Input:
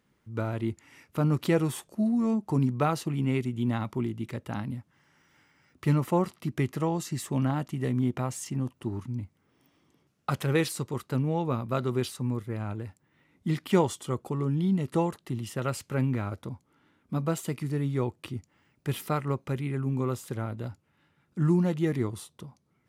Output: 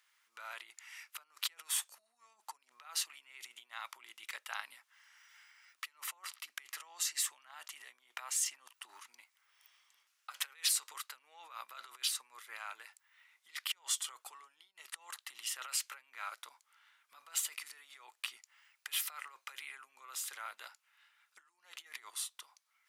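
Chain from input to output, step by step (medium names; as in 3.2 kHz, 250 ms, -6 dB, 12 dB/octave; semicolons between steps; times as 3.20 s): compressor with a negative ratio -32 dBFS, ratio -0.5; Bessel high-pass 1.7 kHz, order 4; trim +1 dB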